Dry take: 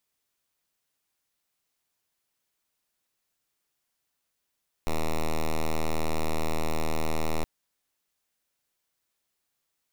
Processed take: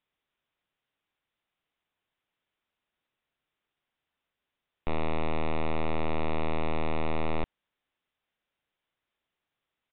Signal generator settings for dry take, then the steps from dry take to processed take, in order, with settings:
pulse 79.3 Hz, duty 5% -25 dBFS 2.57 s
downsampling 8000 Hz

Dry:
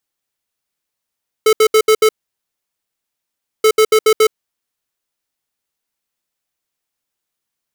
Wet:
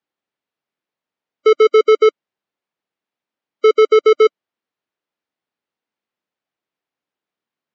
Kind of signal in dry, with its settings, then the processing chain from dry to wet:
beep pattern square 435 Hz, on 0.07 s, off 0.07 s, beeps 5, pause 1.55 s, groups 2, -9.5 dBFS
spectral gate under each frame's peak -25 dB strong; BPF 210–3800 Hz; tilt -2 dB/oct

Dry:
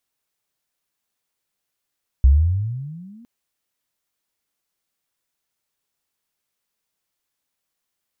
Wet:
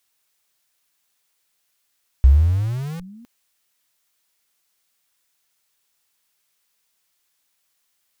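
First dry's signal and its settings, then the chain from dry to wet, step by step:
gliding synth tone sine, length 1.01 s, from 62.7 Hz, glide +23.5 st, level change -35 dB, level -7 dB
low shelf 60 Hz +2 dB; in parallel at -7.5 dB: Schmitt trigger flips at -33 dBFS; on the sum: mismatched tape noise reduction encoder only

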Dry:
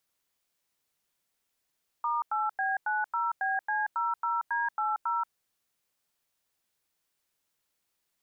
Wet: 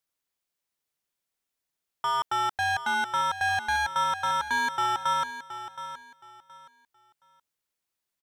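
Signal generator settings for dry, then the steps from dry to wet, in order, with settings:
DTMF "*8B90BC00D80", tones 0.181 s, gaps 93 ms, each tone -29 dBFS
sample leveller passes 3; on a send: feedback echo 0.721 s, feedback 25%, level -12 dB

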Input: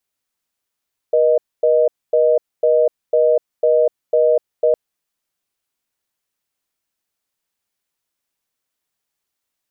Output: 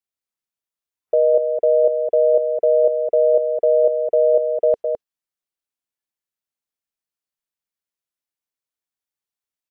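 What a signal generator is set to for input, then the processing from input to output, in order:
call progress tone reorder tone, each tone -13.5 dBFS 3.61 s
spectral noise reduction 13 dB; dynamic EQ 450 Hz, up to -4 dB, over -29 dBFS, Q 6.9; echo 0.21 s -6 dB

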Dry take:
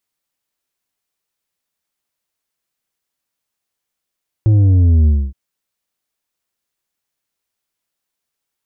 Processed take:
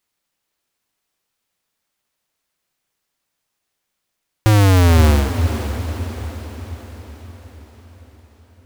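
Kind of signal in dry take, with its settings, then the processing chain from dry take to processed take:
sub drop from 110 Hz, over 0.87 s, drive 6.5 dB, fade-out 0.26 s, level -8.5 dB
half-waves squared off; compressor, threshold -11 dBFS; diffused feedback echo 0.49 s, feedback 56%, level -9 dB

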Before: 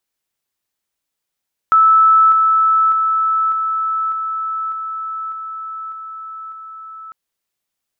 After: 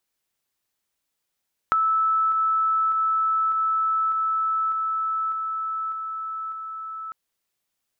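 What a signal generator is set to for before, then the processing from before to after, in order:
level ladder 1310 Hz -7 dBFS, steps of -3 dB, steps 9, 0.60 s 0.00 s
compressor 6:1, threshold -21 dBFS

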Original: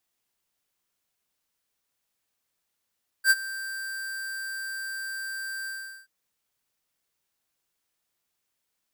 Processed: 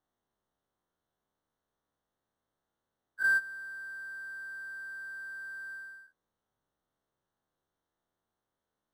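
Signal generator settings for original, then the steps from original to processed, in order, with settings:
ADSR square 1570 Hz, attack 66 ms, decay 38 ms, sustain -18 dB, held 2.43 s, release 0.4 s -16.5 dBFS
spectral dilation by 0.12 s; running mean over 18 samples

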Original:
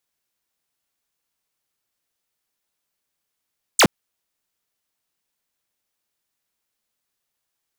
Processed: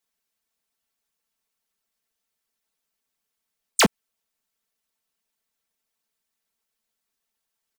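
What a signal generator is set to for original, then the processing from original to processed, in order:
laser zap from 9800 Hz, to 120 Hz, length 0.07 s square, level -12 dB
harmonic-percussive split harmonic -9 dB; comb 4.5 ms, depth 58%; limiter -12 dBFS

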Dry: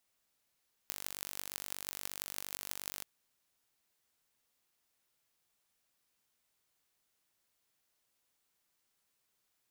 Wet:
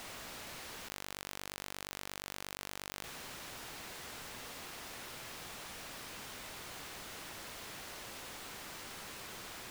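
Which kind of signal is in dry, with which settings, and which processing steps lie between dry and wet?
pulse train 48.5/s, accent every 8, -9.5 dBFS 2.13 s
LPF 2500 Hz 6 dB/oct; fast leveller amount 100%

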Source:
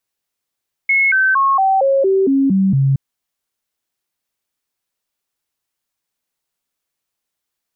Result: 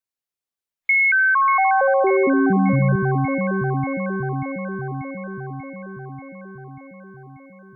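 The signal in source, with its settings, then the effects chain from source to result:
stepped sine 2180 Hz down, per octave 2, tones 9, 0.23 s, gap 0.00 s -10.5 dBFS
on a send: echo with dull and thin repeats by turns 0.294 s, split 1100 Hz, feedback 82%, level -6 dB; on the sum: compressor 2:1, threshold -17 dBFS; spectral noise reduction 12 dB

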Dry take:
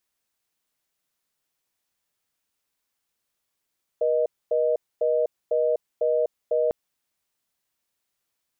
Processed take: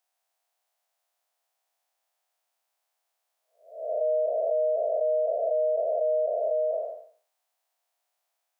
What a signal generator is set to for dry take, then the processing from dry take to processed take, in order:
call progress tone reorder tone, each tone -22 dBFS 2.70 s
time blur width 0.377 s; compressor 1.5:1, threshold -34 dBFS; resonant high-pass 700 Hz, resonance Q 4.7

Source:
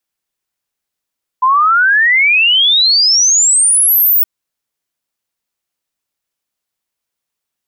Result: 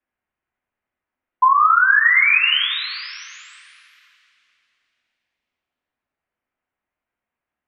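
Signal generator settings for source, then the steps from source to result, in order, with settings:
log sweep 1000 Hz -> 16000 Hz 2.82 s -7 dBFS
LPF 2200 Hz 24 dB/oct; two-slope reverb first 0.48 s, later 2.9 s, from -18 dB, DRR -1 dB; compressor, threshold -11 dBFS

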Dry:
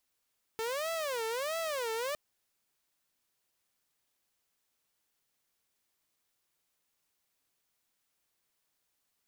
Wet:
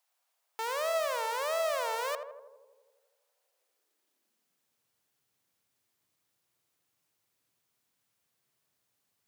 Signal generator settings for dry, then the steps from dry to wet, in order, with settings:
siren wail 445–661 Hz 1.5/s saw -30 dBFS 1.56 s
on a send: tape echo 83 ms, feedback 80%, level -4 dB, low-pass 1100 Hz; on the sum: high-pass sweep 750 Hz -> 110 Hz, 3.32–4.89

